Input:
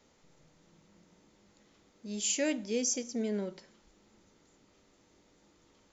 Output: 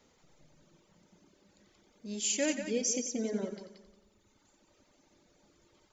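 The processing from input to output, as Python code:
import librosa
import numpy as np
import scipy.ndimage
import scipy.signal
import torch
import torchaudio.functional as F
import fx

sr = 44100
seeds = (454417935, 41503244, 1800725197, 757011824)

y = fx.echo_heads(x, sr, ms=90, heads='first and second', feedback_pct=49, wet_db=-6.5)
y = fx.dereverb_blind(y, sr, rt60_s=1.4)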